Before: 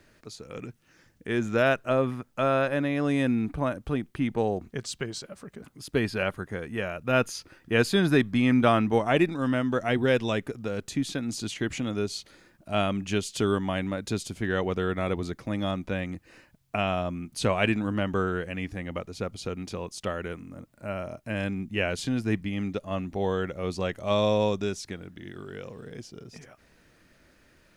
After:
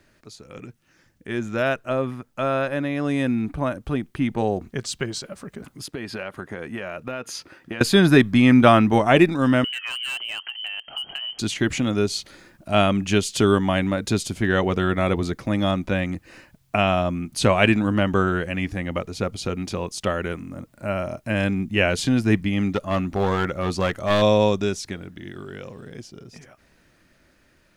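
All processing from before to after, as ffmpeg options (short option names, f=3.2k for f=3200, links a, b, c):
-filter_complex "[0:a]asettb=1/sr,asplit=3[a][b][c];[a]atrim=end=5.864[d];[b]atrim=start=5.86:end=7.81,asetpts=PTS-STARTPTS,afade=t=in:d=0.004:c=qsin,afade=t=out:st=1.946:d=0.004:c=qsin,highpass=f=230:p=1,highshelf=f=4.2k:g=-6.5,acompressor=threshold=-33dB:ratio=16:attack=3.2:release=140:knee=1:detection=peak[e];[c]atrim=start=7.806[f];[d][e]acrossfade=d=0.004:c1=hsin:c2=qsin[g];[g][f]acrossfade=d=0.004:c1=qsin:c2=hsin,asettb=1/sr,asplit=3[h][i][j];[h]atrim=end=9.644[k];[i]atrim=start=9.64:end=11.39,asetpts=PTS-STARTPTS,afade=t=in:d=0.004:c=qsin,afade=t=out:st=1.746:d=0.004:c=qsin,lowpass=f=2.7k:t=q:w=0.5098,lowpass=f=2.7k:t=q:w=0.6013,lowpass=f=2.7k:t=q:w=0.9,lowpass=f=2.7k:t=q:w=2.563,afreqshift=-3200,asoftclip=type=hard:threshold=-21dB,acompressor=threshold=-35dB:ratio=8:attack=3.2:release=140:knee=1:detection=peak[l];[j]atrim=start=11.386[m];[k][l]acrossfade=d=0.004:c1=hsin:c2=qsin[n];[n][m]acrossfade=d=0.004:c1=qsin:c2=hsin,asettb=1/sr,asplit=3[o][p][q];[o]atrim=end=22.724[r];[p]atrim=start=22.72:end=24.22,asetpts=PTS-STARTPTS,afade=t=in:d=0.004:c=qsin,afade=t=out:st=1.496:d=0.004:c=qsin,equalizer=f=1.3k:w=2.9:g=5.5,aeval=exprs='clip(val(0),-1,0.0596)':c=same[s];[q]atrim=start=24.216[t];[r][s]acrossfade=d=0.004:c1=hsin:c2=qsin[u];[u][t]acrossfade=d=0.004:c1=qsin:c2=hsin,bandreject=f=460:w=13,dynaudnorm=f=970:g=9:m=11.5dB"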